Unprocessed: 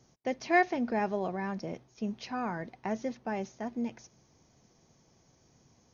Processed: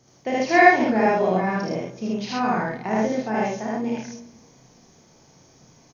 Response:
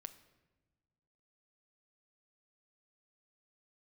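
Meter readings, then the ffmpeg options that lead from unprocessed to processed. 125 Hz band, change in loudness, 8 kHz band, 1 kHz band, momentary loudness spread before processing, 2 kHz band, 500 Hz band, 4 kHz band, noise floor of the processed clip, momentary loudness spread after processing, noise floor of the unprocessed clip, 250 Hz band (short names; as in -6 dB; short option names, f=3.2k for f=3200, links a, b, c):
+11.0 dB, +11.5 dB, n/a, +12.5 dB, 11 LU, +12.5 dB, +12.0 dB, +12.0 dB, -55 dBFS, 14 LU, -66 dBFS, +10.5 dB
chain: -filter_complex "[0:a]lowshelf=f=110:g=-6.5,aecho=1:1:32|55:0.668|0.668,asplit=2[a][b];[1:a]atrim=start_sample=2205,adelay=77[c];[b][c]afir=irnorm=-1:irlink=0,volume=8dB[d];[a][d]amix=inputs=2:normalize=0,volume=5dB"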